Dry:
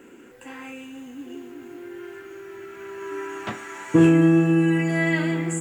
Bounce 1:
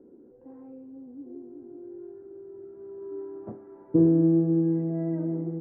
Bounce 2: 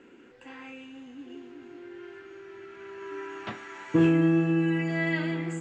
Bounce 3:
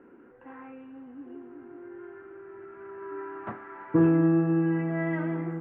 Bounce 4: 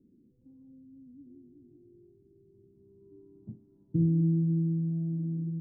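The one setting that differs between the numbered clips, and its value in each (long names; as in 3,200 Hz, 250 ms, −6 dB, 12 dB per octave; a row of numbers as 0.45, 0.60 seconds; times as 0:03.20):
transistor ladder low-pass, frequency: 660, 6,000, 1,700, 230 Hertz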